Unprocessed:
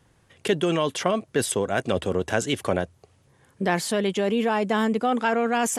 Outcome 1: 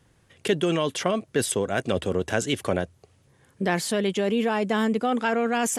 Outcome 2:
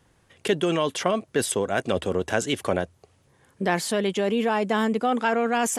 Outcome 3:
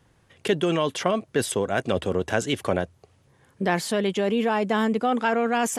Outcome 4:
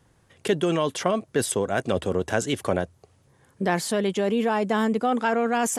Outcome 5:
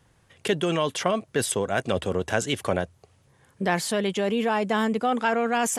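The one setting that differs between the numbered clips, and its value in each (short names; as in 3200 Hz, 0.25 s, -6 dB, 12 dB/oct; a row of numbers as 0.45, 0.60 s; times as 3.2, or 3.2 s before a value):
bell, frequency: 910, 120, 8900, 2700, 310 Hz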